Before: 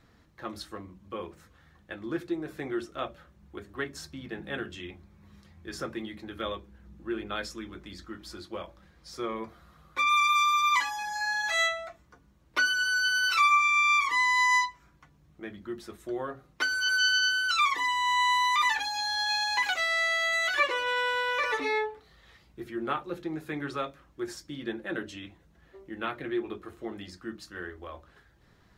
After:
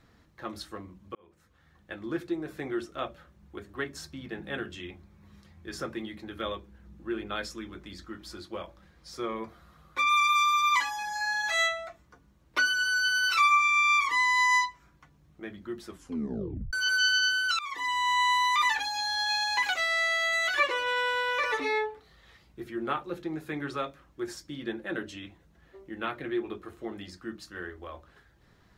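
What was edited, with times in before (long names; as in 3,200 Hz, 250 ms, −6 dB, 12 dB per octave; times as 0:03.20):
0:01.15–0:01.93: fade in
0:15.88: tape stop 0.85 s
0:17.59–0:17.97: fade in, from −22 dB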